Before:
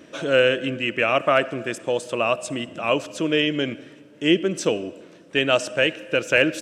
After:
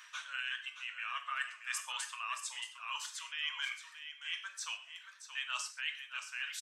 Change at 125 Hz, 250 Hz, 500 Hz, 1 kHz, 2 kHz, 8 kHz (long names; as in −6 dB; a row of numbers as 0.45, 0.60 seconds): below −40 dB, below −40 dB, below −40 dB, −16.0 dB, −14.5 dB, −6.5 dB